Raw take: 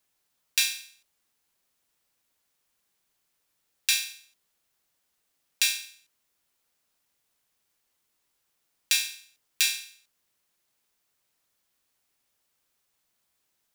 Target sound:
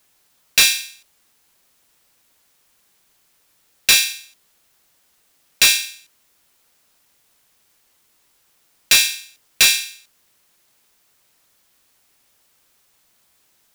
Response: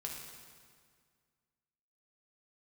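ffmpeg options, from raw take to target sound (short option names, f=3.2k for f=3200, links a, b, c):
-af "acontrast=77,asoftclip=type=hard:threshold=-14.5dB,volume=7.5dB"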